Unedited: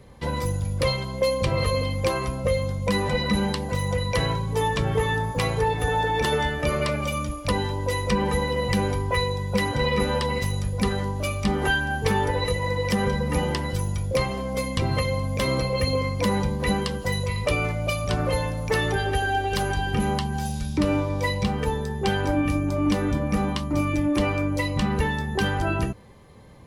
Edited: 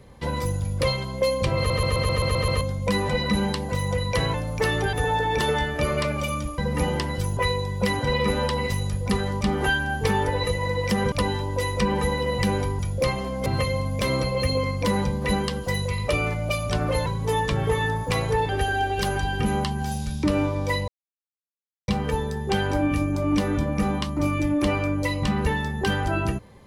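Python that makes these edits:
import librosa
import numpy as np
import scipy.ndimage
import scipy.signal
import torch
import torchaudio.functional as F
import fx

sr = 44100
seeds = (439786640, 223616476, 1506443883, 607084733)

y = fx.edit(x, sr, fx.stutter_over(start_s=1.57, slice_s=0.13, count=8),
    fx.swap(start_s=4.34, length_s=1.43, other_s=18.44, other_length_s=0.59),
    fx.swap(start_s=7.42, length_s=1.67, other_s=13.13, other_length_s=0.79),
    fx.cut(start_s=11.13, length_s=0.29),
    fx.cut(start_s=14.59, length_s=0.25),
    fx.insert_silence(at_s=21.42, length_s=1.0), tone=tone)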